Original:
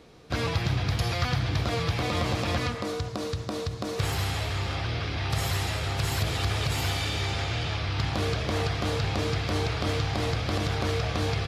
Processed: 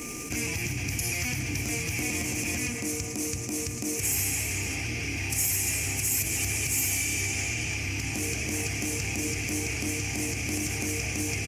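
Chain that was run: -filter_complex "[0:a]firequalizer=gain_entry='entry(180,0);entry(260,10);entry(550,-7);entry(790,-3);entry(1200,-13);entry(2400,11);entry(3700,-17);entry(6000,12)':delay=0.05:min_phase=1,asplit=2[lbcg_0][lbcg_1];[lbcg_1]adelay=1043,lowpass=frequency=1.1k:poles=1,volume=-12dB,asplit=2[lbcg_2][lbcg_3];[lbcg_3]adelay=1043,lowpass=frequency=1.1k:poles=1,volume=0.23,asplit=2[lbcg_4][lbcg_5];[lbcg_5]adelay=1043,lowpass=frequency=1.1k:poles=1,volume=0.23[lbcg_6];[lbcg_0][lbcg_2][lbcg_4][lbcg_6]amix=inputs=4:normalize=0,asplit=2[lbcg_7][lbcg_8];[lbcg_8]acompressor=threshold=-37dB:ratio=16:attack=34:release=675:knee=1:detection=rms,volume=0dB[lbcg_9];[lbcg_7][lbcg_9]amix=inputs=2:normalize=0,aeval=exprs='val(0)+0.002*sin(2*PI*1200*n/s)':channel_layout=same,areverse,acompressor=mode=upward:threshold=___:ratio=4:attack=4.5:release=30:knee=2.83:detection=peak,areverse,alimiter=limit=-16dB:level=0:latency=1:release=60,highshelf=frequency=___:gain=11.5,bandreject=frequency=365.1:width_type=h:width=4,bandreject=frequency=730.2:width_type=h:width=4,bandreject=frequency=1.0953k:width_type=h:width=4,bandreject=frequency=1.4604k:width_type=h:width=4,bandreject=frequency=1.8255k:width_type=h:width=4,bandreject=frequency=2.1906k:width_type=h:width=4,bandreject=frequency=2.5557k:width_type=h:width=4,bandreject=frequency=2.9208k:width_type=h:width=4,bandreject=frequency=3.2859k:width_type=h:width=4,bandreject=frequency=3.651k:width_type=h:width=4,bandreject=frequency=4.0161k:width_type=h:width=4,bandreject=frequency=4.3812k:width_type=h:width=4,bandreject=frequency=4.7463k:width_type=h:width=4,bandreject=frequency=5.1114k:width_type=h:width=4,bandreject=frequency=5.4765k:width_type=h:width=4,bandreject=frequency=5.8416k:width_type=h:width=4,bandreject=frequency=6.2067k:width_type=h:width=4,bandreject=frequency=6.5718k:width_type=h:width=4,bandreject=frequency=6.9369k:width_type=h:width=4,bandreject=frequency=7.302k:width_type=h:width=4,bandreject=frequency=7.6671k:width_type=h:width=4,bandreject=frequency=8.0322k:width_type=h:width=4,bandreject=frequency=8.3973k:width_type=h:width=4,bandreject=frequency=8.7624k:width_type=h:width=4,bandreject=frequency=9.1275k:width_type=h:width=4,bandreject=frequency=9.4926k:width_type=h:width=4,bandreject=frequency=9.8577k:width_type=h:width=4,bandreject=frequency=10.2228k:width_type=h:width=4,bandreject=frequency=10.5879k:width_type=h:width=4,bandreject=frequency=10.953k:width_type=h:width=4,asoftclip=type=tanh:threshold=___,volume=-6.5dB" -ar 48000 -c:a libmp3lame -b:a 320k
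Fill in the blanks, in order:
-27dB, 3.5k, -10dB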